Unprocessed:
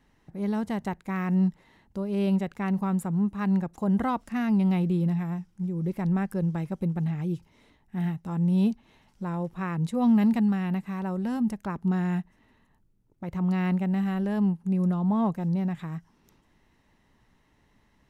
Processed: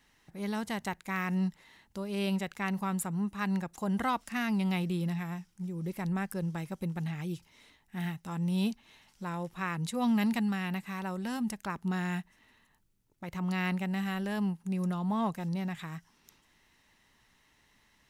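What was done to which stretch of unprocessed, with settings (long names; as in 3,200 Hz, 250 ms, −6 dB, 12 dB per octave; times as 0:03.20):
0:05.53–0:06.84: parametric band 2,700 Hz −2.5 dB 2.5 octaves
whole clip: tilt shelving filter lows −7.5 dB, about 1,200 Hz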